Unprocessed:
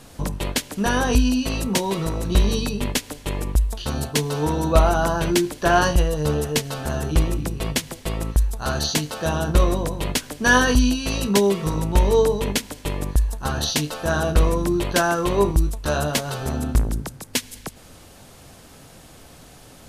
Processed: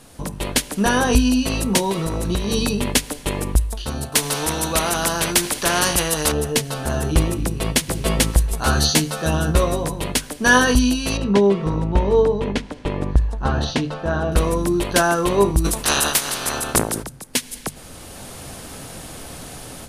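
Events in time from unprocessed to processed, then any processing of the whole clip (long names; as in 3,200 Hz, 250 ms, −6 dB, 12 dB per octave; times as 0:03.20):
0:01.91–0:02.87: downward compressor, threshold −21 dBFS
0:04.12–0:06.32: every bin compressed towards the loudest bin 2 to 1
0:07.44–0:07.97: delay throw 440 ms, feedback 20%, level −1.5 dB
0:08.50–0:09.92: double-tracking delay 13 ms −4 dB
0:11.17–0:14.32: head-to-tape spacing loss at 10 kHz 25 dB
0:15.64–0:17.02: ceiling on every frequency bin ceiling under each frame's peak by 27 dB
whole clip: parametric band 9,600 Hz +6 dB 0.28 octaves; automatic gain control; mains-hum notches 50/100/150 Hz; level −1.5 dB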